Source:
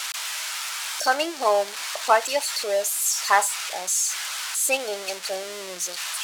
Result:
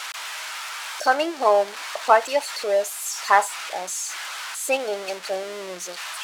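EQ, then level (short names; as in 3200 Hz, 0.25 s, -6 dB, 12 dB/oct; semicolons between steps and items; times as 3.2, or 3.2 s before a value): high shelf 3100 Hz -11.5 dB; +3.5 dB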